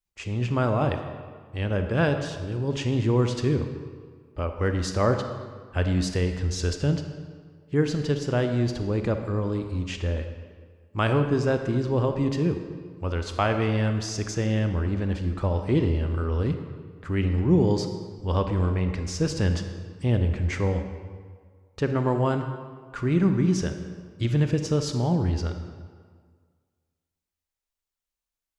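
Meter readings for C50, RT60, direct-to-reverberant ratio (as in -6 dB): 7.5 dB, 1.8 s, 6.5 dB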